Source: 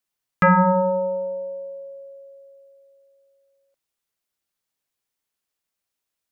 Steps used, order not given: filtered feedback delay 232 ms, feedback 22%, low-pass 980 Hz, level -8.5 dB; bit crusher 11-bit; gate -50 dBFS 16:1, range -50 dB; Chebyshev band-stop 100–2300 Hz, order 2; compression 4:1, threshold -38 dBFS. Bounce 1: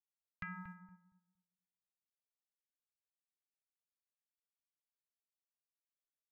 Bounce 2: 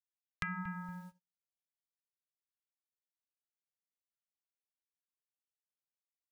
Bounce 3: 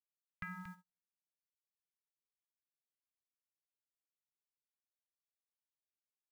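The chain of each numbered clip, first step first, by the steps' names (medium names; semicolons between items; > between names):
bit crusher > compression > Chebyshev band-stop > gate > filtered feedback delay; Chebyshev band-stop > bit crusher > filtered feedback delay > gate > compression; compression > filtered feedback delay > bit crusher > Chebyshev band-stop > gate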